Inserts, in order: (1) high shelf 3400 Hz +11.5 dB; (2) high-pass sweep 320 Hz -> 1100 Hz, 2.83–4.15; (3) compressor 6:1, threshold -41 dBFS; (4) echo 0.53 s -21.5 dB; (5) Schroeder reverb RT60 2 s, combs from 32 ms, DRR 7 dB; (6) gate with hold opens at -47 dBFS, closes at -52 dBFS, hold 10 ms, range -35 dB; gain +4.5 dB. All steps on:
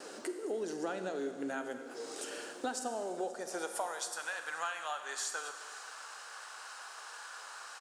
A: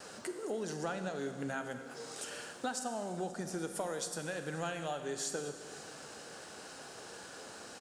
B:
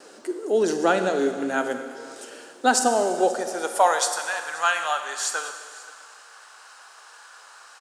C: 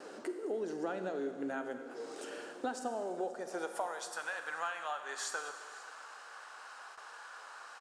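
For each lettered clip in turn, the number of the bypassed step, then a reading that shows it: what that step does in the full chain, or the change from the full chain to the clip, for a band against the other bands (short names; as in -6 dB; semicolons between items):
2, 125 Hz band +15.5 dB; 3, mean gain reduction 7.5 dB; 1, 8 kHz band -6.0 dB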